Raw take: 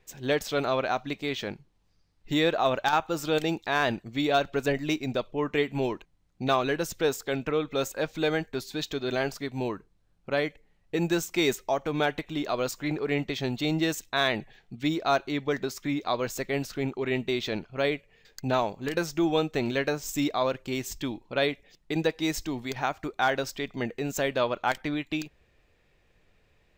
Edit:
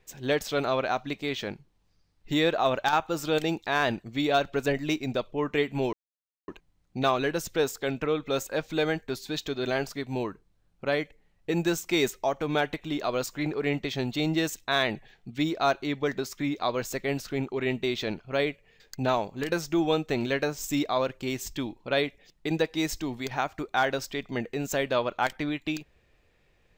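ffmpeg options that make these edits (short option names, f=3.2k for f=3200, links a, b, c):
-filter_complex "[0:a]asplit=2[a][b];[a]atrim=end=5.93,asetpts=PTS-STARTPTS,afade=t=out:st=5.926:d=0.004:c=hsin,apad=pad_dur=0.55[c];[b]atrim=start=5.93,asetpts=PTS-STARTPTS,afade=t=in:d=0.004:c=hsin[d];[c][d]concat=n=2:v=0:a=1"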